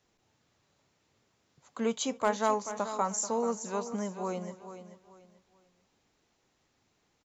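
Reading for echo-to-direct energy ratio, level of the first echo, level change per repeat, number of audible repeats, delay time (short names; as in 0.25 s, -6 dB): -11.0 dB, -23.0 dB, no steady repeat, 5, 0.26 s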